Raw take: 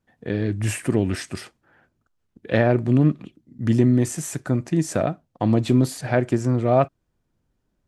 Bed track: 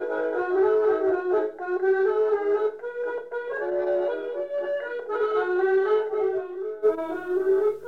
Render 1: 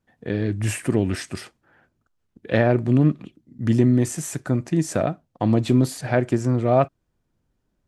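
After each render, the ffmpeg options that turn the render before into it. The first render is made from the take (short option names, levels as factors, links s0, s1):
-af anull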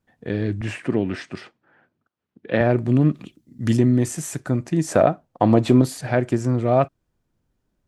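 -filter_complex "[0:a]asettb=1/sr,asplit=3[s0][s1][s2];[s0]atrim=end=0.614[s3];[s1]atrim=start=0.61:end=2.61,asetpts=PTS-STARTPTS,afade=t=in:d=0.004:c=qsin,afade=t=out:st=1.996:d=0.004:c=qsin,highpass=140,lowpass=3700[s4];[s2]atrim=start=2.606[s5];[s3][s4]acrossfade=d=0.004:c1=hsin:c2=qsin[s6];[s6][s5]acrossfade=d=0.004:c1=qsin:c2=hsin,asettb=1/sr,asplit=3[s7][s8][s9];[s7]atrim=end=3.144[s10];[s8]atrim=start=3.14:end=3.77,asetpts=PTS-STARTPTS,afade=t=in:d=0.004:c=qsin,afade=t=out:st=0.626:d=0.004:c=qsin,highshelf=f=3000:g=10.5[s11];[s9]atrim=start=3.766[s12];[s10][s11]acrossfade=d=0.004:c1=hsin:c2=qsin[s13];[s13][s12]acrossfade=d=0.004:c1=qsin:c2=hsin,asettb=1/sr,asplit=3[s14][s15][s16];[s14]atrim=end=4.874[s17];[s15]atrim=start=4.87:end=5.82,asetpts=PTS-STARTPTS,afade=t=in:d=0.004:c=qsin,afade=t=out:st=0.946:d=0.004:c=qsin,equalizer=f=760:t=o:w=2.6:g=8[s18];[s16]atrim=start=5.816[s19];[s17][s18]acrossfade=d=0.004:c1=hsin:c2=qsin[s20];[s20][s19]acrossfade=d=0.004:c1=qsin:c2=hsin"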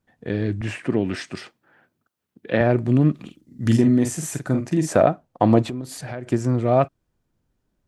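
-filter_complex "[0:a]asettb=1/sr,asplit=3[s0][s1][s2];[s0]atrim=end=1.044[s3];[s1]atrim=start=1.04:end=2.53,asetpts=PTS-STARTPTS,afade=t=in:d=0.004:c=qsin,afade=t=out:st=1.486:d=0.004:c=qsin,highshelf=f=4700:g=10.5[s4];[s2]atrim=start=2.526[s5];[s3][s4]acrossfade=d=0.004:c1=hsin:c2=qsin[s6];[s6][s5]acrossfade=d=0.004:c1=qsin:c2=hsin,asettb=1/sr,asplit=3[s7][s8][s9];[s7]atrim=end=3.214[s10];[s8]atrim=start=3.21:end=4.89,asetpts=PTS-STARTPTS,afade=t=in:d=0.004:c=qsin,afade=t=out:st=1.676:d=0.004:c=qsin,asplit=2[s11][s12];[s12]adelay=45,volume=0.473[s13];[s11][s13]amix=inputs=2:normalize=0,atrim=end_sample=74088[s14];[s9]atrim=start=4.886[s15];[s10][s14]acrossfade=d=0.004:c1=hsin:c2=qsin[s16];[s16][s15]acrossfade=d=0.004:c1=qsin:c2=hsin,asettb=1/sr,asplit=3[s17][s18][s19];[s17]atrim=end=5.624[s20];[s18]atrim=start=5.62:end=6.27,asetpts=PTS-STARTPTS,afade=t=in:d=0.004:c=qsin,afade=t=out:st=0.646:d=0.004:c=qsin,acompressor=threshold=0.0355:ratio=4:attack=3.2:release=140:knee=1:detection=peak[s21];[s19]atrim=start=6.266[s22];[s20][s21]acrossfade=d=0.004:c1=hsin:c2=qsin[s23];[s23][s22]acrossfade=d=0.004:c1=qsin:c2=hsin"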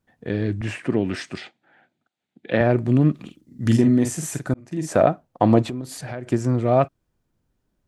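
-filter_complex "[0:a]asettb=1/sr,asplit=3[s0][s1][s2];[s0]atrim=end=1.374[s3];[s1]atrim=start=1.37:end=2.51,asetpts=PTS-STARTPTS,afade=t=in:d=0.004:c=qsin,afade=t=out:st=1.136:d=0.004:c=qsin,highpass=140,equalizer=f=440:t=q:w=4:g=-5,equalizer=f=760:t=q:w=4:g=7,equalizer=f=1100:t=q:w=4:g=-9,equalizer=f=2200:t=q:w=4:g=5,equalizer=f=3600:t=q:w=4:g=6,equalizer=f=5500:t=q:w=4:g=-7,lowpass=f=7400:w=0.5412,lowpass=f=7400:w=1.3066[s4];[s2]atrim=start=2.506[s5];[s3][s4]acrossfade=d=0.004:c1=hsin:c2=qsin[s6];[s6][s5]acrossfade=d=0.004:c1=qsin:c2=hsin,asplit=2[s7][s8];[s7]atrim=end=4.54,asetpts=PTS-STARTPTS,afade=t=out:st=4.536:d=0.004:c=hsin[s9];[s8]atrim=start=4.54,asetpts=PTS-STARTPTS,afade=t=in:d=0.5[s10];[s9][s10]concat=n=2:v=0:a=1"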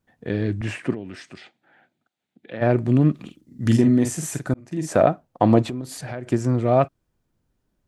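-filter_complex "[0:a]asplit=3[s0][s1][s2];[s0]afade=t=out:st=0.93:d=0.02[s3];[s1]acompressor=threshold=0.00251:ratio=1.5:attack=3.2:release=140:knee=1:detection=peak,afade=t=in:st=0.93:d=0.02,afade=t=out:st=2.61:d=0.02[s4];[s2]afade=t=in:st=2.61:d=0.02[s5];[s3][s4][s5]amix=inputs=3:normalize=0"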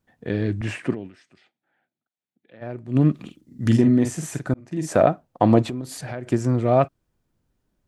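-filter_complex "[0:a]asettb=1/sr,asplit=3[s0][s1][s2];[s0]atrim=end=3.694[s3];[s1]atrim=start=3.69:end=4.77,asetpts=PTS-STARTPTS,afade=t=in:d=0.004:c=qsin,afade=t=out:st=1.076:d=0.004:c=qsin,highshelf=f=6100:g=-7.5[s4];[s2]atrim=start=4.766[s5];[s3][s4]acrossfade=d=0.004:c1=hsin:c2=qsin[s6];[s6][s5]acrossfade=d=0.004:c1=qsin:c2=hsin,asplit=3[s7][s8][s9];[s7]atrim=end=1.35,asetpts=PTS-STARTPTS,afade=t=out:st=1.06:d=0.29:c=exp:silence=0.188365[s10];[s8]atrim=start=1.35:end=2.68,asetpts=PTS-STARTPTS,volume=0.188[s11];[s9]atrim=start=2.68,asetpts=PTS-STARTPTS,afade=t=in:d=0.29:c=exp:silence=0.188365[s12];[s10][s11][s12]concat=n=3:v=0:a=1"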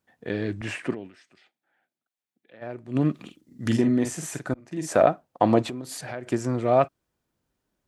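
-af "highpass=46,equalizer=f=88:w=0.36:g=-8.5"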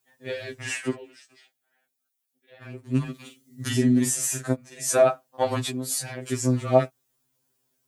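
-af "crystalizer=i=3.5:c=0,afftfilt=real='re*2.45*eq(mod(b,6),0)':imag='im*2.45*eq(mod(b,6),0)':win_size=2048:overlap=0.75"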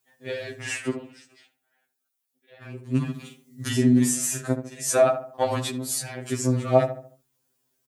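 -filter_complex "[0:a]asplit=2[s0][s1];[s1]adelay=73,lowpass=f=1300:p=1,volume=0.355,asplit=2[s2][s3];[s3]adelay=73,lowpass=f=1300:p=1,volume=0.44,asplit=2[s4][s5];[s5]adelay=73,lowpass=f=1300:p=1,volume=0.44,asplit=2[s6][s7];[s7]adelay=73,lowpass=f=1300:p=1,volume=0.44,asplit=2[s8][s9];[s9]adelay=73,lowpass=f=1300:p=1,volume=0.44[s10];[s0][s2][s4][s6][s8][s10]amix=inputs=6:normalize=0"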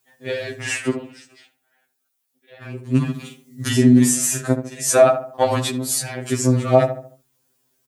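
-af "volume=2,alimiter=limit=0.794:level=0:latency=1"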